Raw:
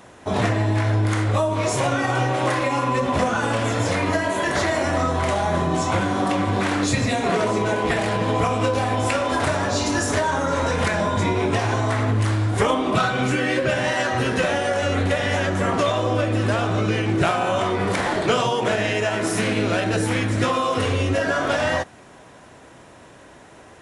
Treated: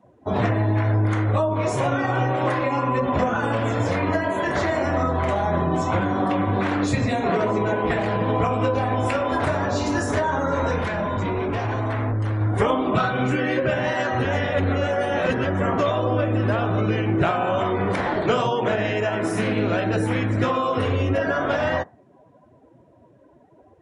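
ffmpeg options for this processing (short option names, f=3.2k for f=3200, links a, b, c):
-filter_complex "[0:a]asettb=1/sr,asplit=3[a][b][c];[a]atrim=end=10.784[d];[b]atrim=start=10.78:end=12.41,asetpts=PTS-STARTPTS,afade=t=in:d=0.004:c=qsin,afade=t=out:st=1.626:d=0.004:c=qsin,asoftclip=type=hard:threshold=-21dB[e];[c]atrim=start=12.406[f];[d][e]acrossfade=d=0.004:c1=hsin:c2=qsin[g];[g][f]acrossfade=d=0.004:c1=qsin:c2=hsin,asplit=3[h][i][j];[h]atrim=end=14.252[k];[i]atrim=start=14.248:end=15.452,asetpts=PTS-STARTPTS,areverse[l];[j]atrim=start=15.448[m];[k][l]acrossfade=d=0.004:c1=hsin:c2=hsin[n];[n][m]acrossfade=d=0.004:c1=hsin:c2=hsin,afftdn=nr=21:nf=-38,highshelf=f=2.8k:g=-9"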